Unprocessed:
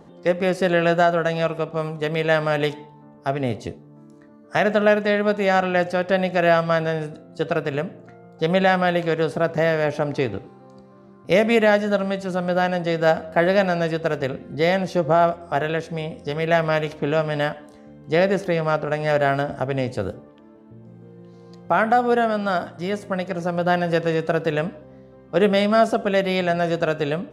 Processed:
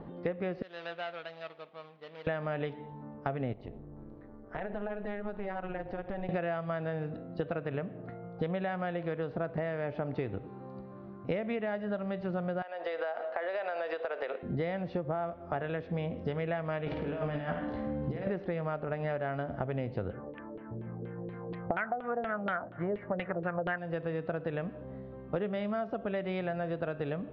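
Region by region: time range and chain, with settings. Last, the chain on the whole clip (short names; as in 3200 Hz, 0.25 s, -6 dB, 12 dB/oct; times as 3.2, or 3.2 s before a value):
0.62–2.27 median filter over 25 samples + differentiator
3.53–6.29 high shelf 4300 Hz -6.5 dB + AM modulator 200 Hz, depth 70% + compressor 3:1, threshold -38 dBFS
12.62–14.43 HPF 480 Hz 24 dB/oct + high shelf 7600 Hz +6 dB + compressor 12:1, threshold -27 dBFS
16.86–18.27 doubler 17 ms -8.5 dB + negative-ratio compressor -30 dBFS + flutter echo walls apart 9.2 m, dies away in 0.46 s
20.1–23.78 bell 1800 Hz +9.5 dB 1.4 oct + LFO low-pass saw down 4.2 Hz 380–3400 Hz
whole clip: Bessel low-pass 2300 Hz, order 8; low shelf 87 Hz +9 dB; compressor 16:1, threshold -30 dBFS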